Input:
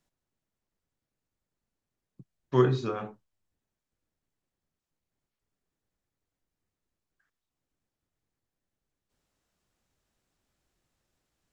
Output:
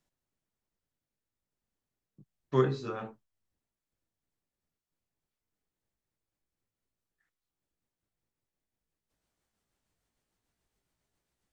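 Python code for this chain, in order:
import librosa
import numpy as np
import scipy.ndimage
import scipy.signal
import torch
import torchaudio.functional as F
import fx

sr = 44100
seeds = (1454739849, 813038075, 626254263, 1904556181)

y = fx.pitch_glide(x, sr, semitones=2.5, runs='starting unshifted')
y = y * 10.0 ** (-2.5 / 20.0)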